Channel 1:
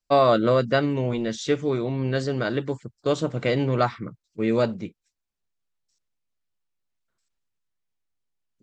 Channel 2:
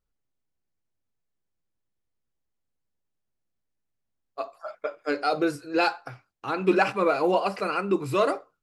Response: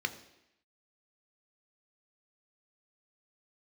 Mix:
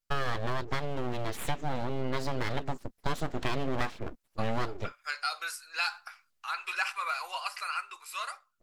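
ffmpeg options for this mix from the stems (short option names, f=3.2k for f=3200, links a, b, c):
-filter_complex "[0:a]dynaudnorm=f=250:g=11:m=7dB,aeval=exprs='abs(val(0))':c=same,volume=-4dB[a];[1:a]aemphasis=mode=production:type=cd,dynaudnorm=f=160:g=13:m=5.5dB,highpass=f=1.1k:w=0.5412,highpass=f=1.1k:w=1.3066,volume=-6.5dB[b];[a][b]amix=inputs=2:normalize=0,acompressor=threshold=-27dB:ratio=3"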